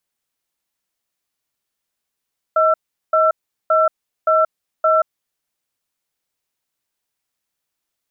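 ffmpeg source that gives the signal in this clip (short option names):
-f lavfi -i "aevalsrc='0.2*(sin(2*PI*634*t)+sin(2*PI*1340*t))*clip(min(mod(t,0.57),0.18-mod(t,0.57))/0.005,0,1)':d=2.62:s=44100"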